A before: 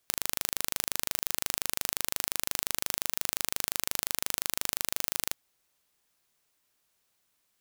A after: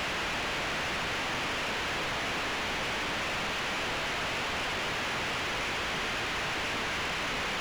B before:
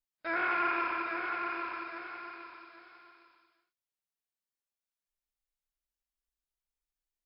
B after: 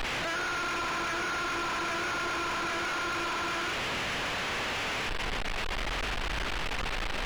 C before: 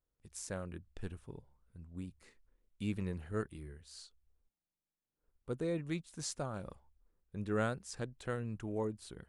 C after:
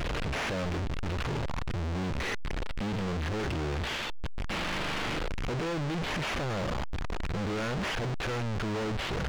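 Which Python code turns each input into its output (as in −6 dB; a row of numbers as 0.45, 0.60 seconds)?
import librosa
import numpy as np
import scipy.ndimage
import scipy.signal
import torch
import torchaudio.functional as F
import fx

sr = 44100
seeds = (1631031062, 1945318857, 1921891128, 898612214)

y = fx.delta_mod(x, sr, bps=16000, step_db=-17.5)
y = np.clip(y, -10.0 ** (-28.0 / 20.0), 10.0 ** (-28.0 / 20.0))
y = F.gain(torch.from_numpy(y), -3.0).numpy()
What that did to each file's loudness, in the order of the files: −0.5, +2.0, +8.0 LU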